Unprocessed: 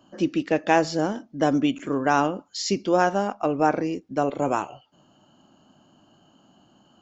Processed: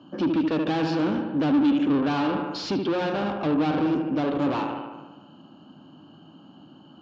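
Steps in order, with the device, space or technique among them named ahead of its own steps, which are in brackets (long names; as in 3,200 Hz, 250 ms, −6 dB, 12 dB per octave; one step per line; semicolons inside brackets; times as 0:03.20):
analogue delay pedal into a guitar amplifier (bucket-brigade delay 74 ms, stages 2,048, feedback 65%, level −11 dB; tube saturation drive 31 dB, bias 0.45; loudspeaker in its box 86–4,200 Hz, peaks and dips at 160 Hz +5 dB, 290 Hz +7 dB, 670 Hz −5 dB, 2,000 Hz −9 dB)
level +7.5 dB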